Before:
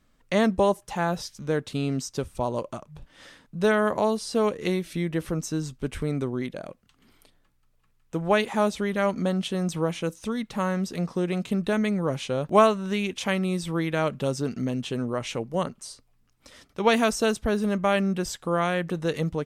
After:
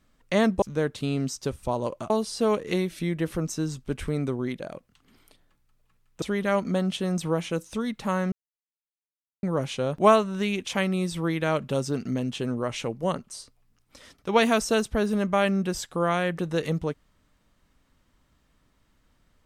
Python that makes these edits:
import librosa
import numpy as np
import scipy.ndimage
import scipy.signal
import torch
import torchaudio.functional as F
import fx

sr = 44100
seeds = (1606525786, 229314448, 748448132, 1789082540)

y = fx.edit(x, sr, fx.cut(start_s=0.62, length_s=0.72),
    fx.cut(start_s=2.82, length_s=1.22),
    fx.cut(start_s=8.16, length_s=0.57),
    fx.silence(start_s=10.83, length_s=1.11), tone=tone)